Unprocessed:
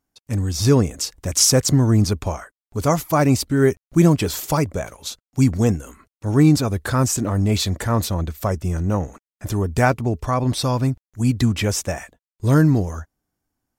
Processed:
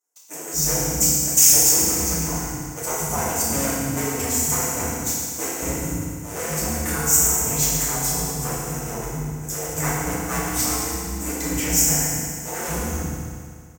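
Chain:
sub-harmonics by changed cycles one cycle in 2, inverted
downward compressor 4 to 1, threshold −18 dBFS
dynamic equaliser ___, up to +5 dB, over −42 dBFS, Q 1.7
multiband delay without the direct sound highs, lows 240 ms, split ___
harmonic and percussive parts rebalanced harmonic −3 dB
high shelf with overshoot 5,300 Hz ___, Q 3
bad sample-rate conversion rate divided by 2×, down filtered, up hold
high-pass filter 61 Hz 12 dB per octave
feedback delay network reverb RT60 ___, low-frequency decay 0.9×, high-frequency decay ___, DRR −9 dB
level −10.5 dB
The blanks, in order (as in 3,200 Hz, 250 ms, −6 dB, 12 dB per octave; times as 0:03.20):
2,100 Hz, 310 Hz, +9.5 dB, 2.1 s, 0.95×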